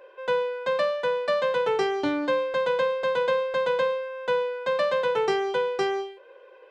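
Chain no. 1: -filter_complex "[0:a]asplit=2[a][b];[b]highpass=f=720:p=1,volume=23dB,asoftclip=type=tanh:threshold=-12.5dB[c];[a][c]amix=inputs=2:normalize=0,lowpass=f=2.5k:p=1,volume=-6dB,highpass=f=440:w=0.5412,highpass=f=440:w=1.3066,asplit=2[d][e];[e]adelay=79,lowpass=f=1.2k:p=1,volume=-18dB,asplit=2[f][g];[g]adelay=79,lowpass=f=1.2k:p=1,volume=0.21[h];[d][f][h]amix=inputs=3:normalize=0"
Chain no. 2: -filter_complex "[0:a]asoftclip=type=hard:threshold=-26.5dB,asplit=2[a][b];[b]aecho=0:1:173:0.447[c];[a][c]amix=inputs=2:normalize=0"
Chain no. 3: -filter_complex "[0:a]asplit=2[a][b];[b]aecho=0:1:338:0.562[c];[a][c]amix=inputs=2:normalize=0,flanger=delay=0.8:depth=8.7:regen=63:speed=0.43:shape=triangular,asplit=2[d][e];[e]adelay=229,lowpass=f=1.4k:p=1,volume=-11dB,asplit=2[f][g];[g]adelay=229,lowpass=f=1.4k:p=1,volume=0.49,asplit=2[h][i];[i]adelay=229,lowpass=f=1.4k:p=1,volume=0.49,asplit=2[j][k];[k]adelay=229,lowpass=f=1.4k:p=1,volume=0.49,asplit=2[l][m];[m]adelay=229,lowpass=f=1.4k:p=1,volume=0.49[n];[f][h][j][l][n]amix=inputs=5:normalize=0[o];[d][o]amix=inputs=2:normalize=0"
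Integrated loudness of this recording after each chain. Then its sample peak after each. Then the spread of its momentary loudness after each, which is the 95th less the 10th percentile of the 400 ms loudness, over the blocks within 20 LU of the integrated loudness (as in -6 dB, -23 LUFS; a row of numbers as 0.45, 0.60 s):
-21.0, -29.0, -28.0 LUFS; -11.5, -23.5, -13.5 dBFS; 3, 4, 5 LU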